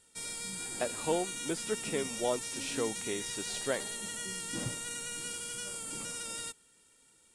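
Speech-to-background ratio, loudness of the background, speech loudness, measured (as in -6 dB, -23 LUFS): 0.5 dB, -37.0 LUFS, -36.5 LUFS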